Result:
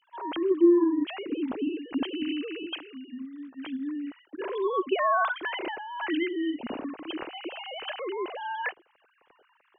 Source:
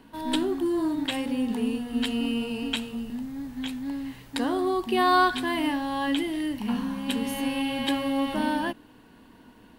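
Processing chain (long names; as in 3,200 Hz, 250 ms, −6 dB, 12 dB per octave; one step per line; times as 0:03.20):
three sine waves on the formant tracks
0:02.66–0:03.65: low-shelf EQ 320 Hz −11.5 dB
level −2 dB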